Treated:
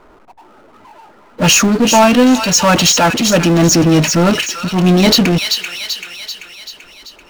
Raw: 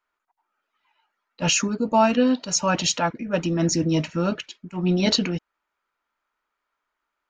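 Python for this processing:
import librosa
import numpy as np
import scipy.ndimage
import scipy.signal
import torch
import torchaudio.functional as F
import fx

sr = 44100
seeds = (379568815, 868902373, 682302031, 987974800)

y = fx.env_lowpass(x, sr, base_hz=480.0, full_db=-20.0)
y = fx.echo_wet_highpass(y, sr, ms=387, feedback_pct=32, hz=2300.0, wet_db=-8.0)
y = fx.power_curve(y, sr, exponent=0.5)
y = F.gain(torch.from_numpy(y), 5.0).numpy()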